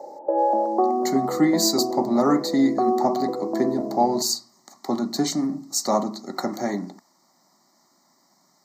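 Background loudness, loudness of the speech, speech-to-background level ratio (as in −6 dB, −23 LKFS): −25.5 LKFS, −24.0 LKFS, 1.5 dB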